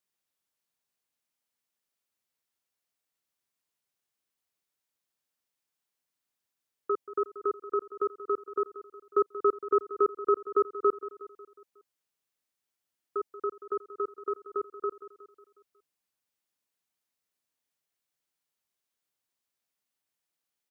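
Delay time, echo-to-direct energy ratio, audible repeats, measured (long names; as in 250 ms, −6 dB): 182 ms, −13.0 dB, 4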